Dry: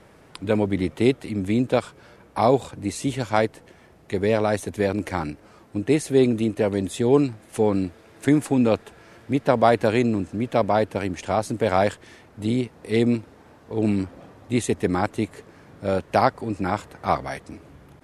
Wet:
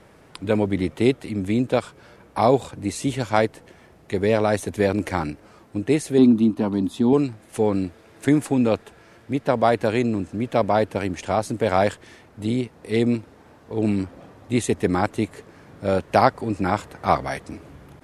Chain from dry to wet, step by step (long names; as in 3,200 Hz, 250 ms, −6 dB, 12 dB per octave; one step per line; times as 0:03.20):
0:06.18–0:07.13: octave-band graphic EQ 125/250/500/1,000/2,000/4,000/8,000 Hz −3/+12/−10/+10/−10/+4/−9 dB
speech leveller 2 s